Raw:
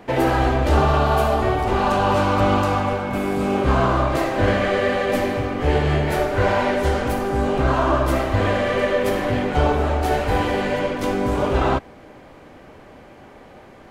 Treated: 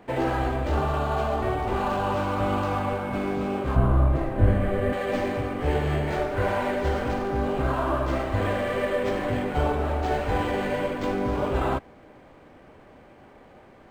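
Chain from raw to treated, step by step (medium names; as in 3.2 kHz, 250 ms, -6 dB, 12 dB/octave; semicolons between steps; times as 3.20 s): 3.76–4.93 s: RIAA curve playback; gain riding within 3 dB 0.5 s; decimation joined by straight lines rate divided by 4×; trim -7.5 dB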